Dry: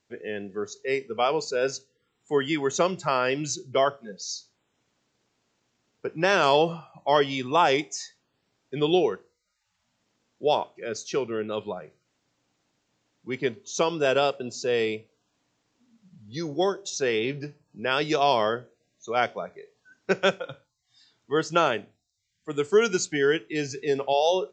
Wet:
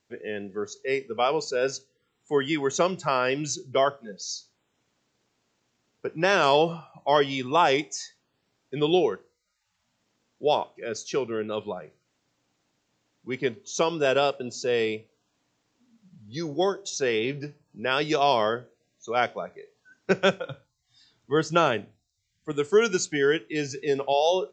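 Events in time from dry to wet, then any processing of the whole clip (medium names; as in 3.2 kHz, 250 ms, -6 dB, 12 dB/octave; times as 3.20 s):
20.10–22.52 s: bass shelf 160 Hz +9 dB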